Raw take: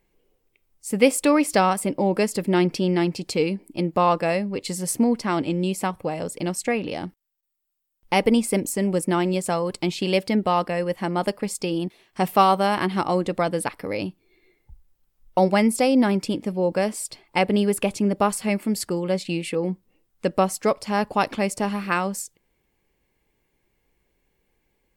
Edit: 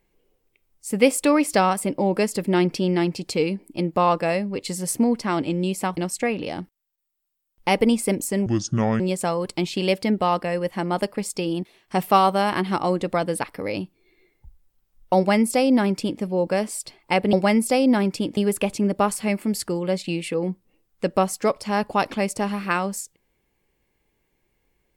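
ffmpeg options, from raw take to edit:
ffmpeg -i in.wav -filter_complex "[0:a]asplit=6[link_01][link_02][link_03][link_04][link_05][link_06];[link_01]atrim=end=5.972[link_07];[link_02]atrim=start=6.418:end=8.914[link_08];[link_03]atrim=start=8.91:end=9.25,asetpts=PTS-STARTPTS,asetrate=27783,aresample=44100[link_09];[link_04]atrim=start=9.246:end=17.582[link_10];[link_05]atrim=start=15.418:end=16.462[link_11];[link_06]atrim=start=17.578[link_12];[link_07][link_08]acrossfade=duration=0.004:curve1=hsin:curve2=hsin[link_13];[link_13][link_09]acrossfade=duration=0.004:curve1=hsin:curve2=hsin[link_14];[link_14][link_10]acrossfade=duration=0.004:curve1=hsin:curve2=hsin[link_15];[link_15][link_11]acrossfade=duration=0.004:curve1=hsin:curve2=hsin[link_16];[link_16][link_12]acrossfade=duration=0.004:curve1=hsin:curve2=hsin" out.wav

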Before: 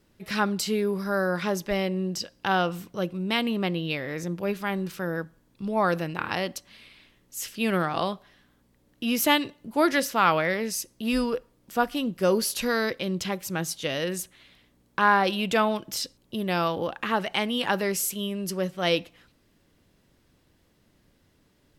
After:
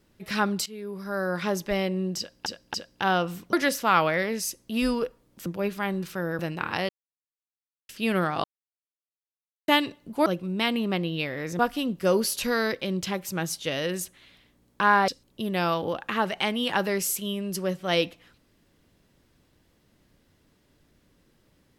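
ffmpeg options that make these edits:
ffmpeg -i in.wav -filter_complex "[0:a]asplit=14[link_01][link_02][link_03][link_04][link_05][link_06][link_07][link_08][link_09][link_10][link_11][link_12][link_13][link_14];[link_01]atrim=end=0.66,asetpts=PTS-STARTPTS,afade=type=out:start_time=0.656:duration=0.004:curve=hsin:silence=0.1[link_15];[link_02]atrim=start=0.66:end=2.462,asetpts=PTS-STARTPTS,afade=type=in:duration=0.83:silence=0.1[link_16];[link_03]atrim=start=2.178:end=2.462[link_17];[link_04]atrim=start=2.178:end=2.972[link_18];[link_05]atrim=start=9.838:end=11.772[link_19];[link_06]atrim=start=4.298:end=5.232[link_20];[link_07]atrim=start=5.968:end=6.47,asetpts=PTS-STARTPTS,afade=type=out:start_time=0.498:duration=0.004:curve=hsin[link_21];[link_08]atrim=start=6.47:end=7.47,asetpts=PTS-STARTPTS,volume=0[link_22];[link_09]atrim=start=7.47:end=8.02,asetpts=PTS-STARTPTS,afade=type=in:duration=0.004:curve=hsin,afade=type=out:start_time=0.546:duration=0.004:curve=hsin[link_23];[link_10]atrim=start=8.02:end=9.26,asetpts=PTS-STARTPTS,volume=0[link_24];[link_11]atrim=start=9.26:end=9.842,asetpts=PTS-STARTPTS,afade=type=in:duration=0.004:curve=hsin[link_25];[link_12]atrim=start=2.968:end=4.302[link_26];[link_13]atrim=start=11.768:end=15.262[link_27];[link_14]atrim=start=16.018[link_28];[link_15][link_16]concat=n=2:v=0:a=1[link_29];[link_29][link_17]acrossfade=duration=0.004:curve1=hsin:curve2=hsin[link_30];[link_30][link_18]acrossfade=duration=0.004:curve1=hsin:curve2=hsin[link_31];[link_31][link_19]acrossfade=duration=0.004:curve1=hsin:curve2=hsin[link_32];[link_32][link_20]acrossfade=duration=0.004:curve1=hsin:curve2=hsin[link_33];[link_21][link_22][link_23][link_24][link_25]concat=n=5:v=0:a=1[link_34];[link_33][link_34]acrossfade=duration=0.004:curve1=hsin:curve2=hsin[link_35];[link_35][link_26]acrossfade=duration=0.004:curve1=hsin:curve2=hsin[link_36];[link_36][link_27]acrossfade=duration=0.004:curve1=hsin:curve2=hsin[link_37];[link_37][link_28]acrossfade=duration=0.004:curve1=hsin:curve2=hsin" out.wav

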